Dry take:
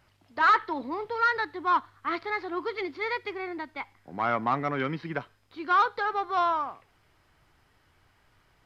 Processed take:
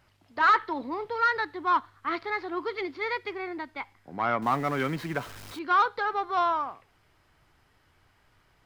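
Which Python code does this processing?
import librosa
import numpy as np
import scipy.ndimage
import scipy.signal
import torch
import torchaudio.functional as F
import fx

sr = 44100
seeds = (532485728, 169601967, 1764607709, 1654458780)

y = fx.zero_step(x, sr, step_db=-38.5, at=(4.42, 5.59))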